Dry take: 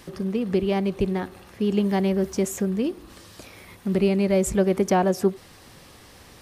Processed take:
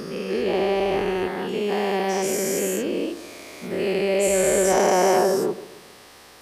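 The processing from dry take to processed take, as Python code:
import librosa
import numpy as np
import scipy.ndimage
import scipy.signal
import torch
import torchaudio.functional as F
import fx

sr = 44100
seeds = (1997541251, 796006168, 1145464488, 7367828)

p1 = fx.spec_dilate(x, sr, span_ms=480)
p2 = fx.bass_treble(p1, sr, bass_db=-13, treble_db=-1)
p3 = p2 + fx.echo_filtered(p2, sr, ms=136, feedback_pct=44, hz=2000.0, wet_db=-15.0, dry=0)
y = p3 * 10.0 ** (-3.0 / 20.0)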